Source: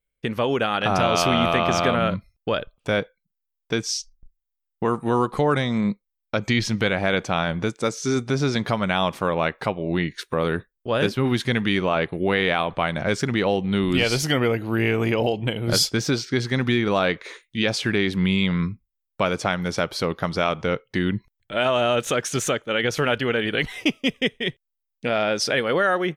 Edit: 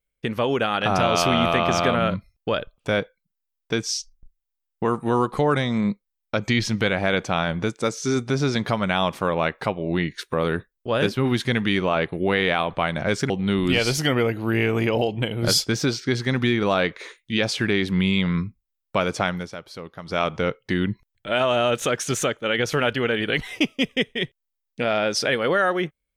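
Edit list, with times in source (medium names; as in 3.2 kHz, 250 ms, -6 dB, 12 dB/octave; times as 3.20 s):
13.30–13.55 s: delete
19.57–20.46 s: dip -12.5 dB, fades 0.17 s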